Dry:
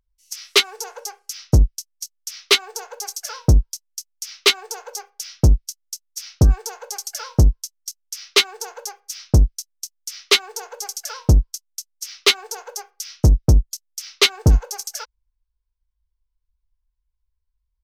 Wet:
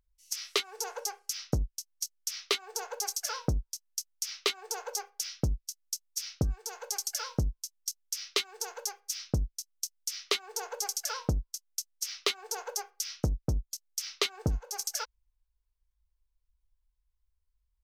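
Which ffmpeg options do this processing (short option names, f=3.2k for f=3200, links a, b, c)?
-filter_complex "[0:a]asettb=1/sr,asplit=3[a][b][c];[a]atrim=end=5.294[d];[b]atrim=start=5.29:end=10.26,asetpts=PTS-STARTPTS,afade=t=in:d=0.004:c=qsin,afade=t=out:st=4.966:d=0.004:c=qsin,equalizer=f=690:t=o:w=2.6:g=-4[e];[c]atrim=start=10.256[f];[d][e]acrossfade=d=0.004:c1=hsin:c2=qsin[g];[g][f]acrossfade=d=0.004:c1=qsin:c2=hsin,acompressor=threshold=-24dB:ratio=12,volume=-2.5dB"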